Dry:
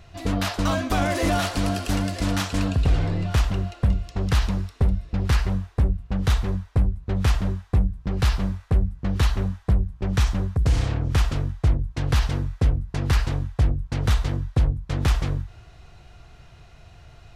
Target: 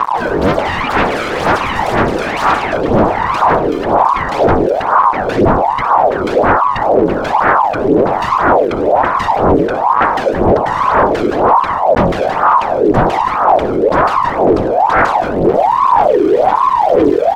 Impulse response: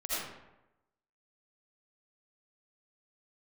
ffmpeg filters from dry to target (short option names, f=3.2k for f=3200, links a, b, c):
-filter_complex "[0:a]acompressor=threshold=-36dB:ratio=4,equalizer=f=200:w=0.43:g=8.5,aecho=1:1:3.6:0.97,aecho=1:1:548:0.15,asplit=2[a][b];[1:a]atrim=start_sample=2205,lowshelf=f=150:g=4[c];[b][c]afir=irnorm=-1:irlink=0,volume=-25.5dB[d];[a][d]amix=inputs=2:normalize=0,dynaudnorm=f=150:g=9:m=5.5dB,aeval=exprs='val(0)*gte(abs(val(0)),0.00944)':c=same,lowshelf=f=480:g=3.5,aeval=exprs='0.355*sin(PI/2*7.94*val(0)/0.355)':c=same,aphaser=in_gain=1:out_gain=1:delay=1.1:decay=0.67:speed=2:type=sinusoidal,lowpass=f=1.5k:p=1,aeval=exprs='val(0)*sin(2*PI*710*n/s+710*0.5/1.2*sin(2*PI*1.2*n/s))':c=same,volume=-2.5dB"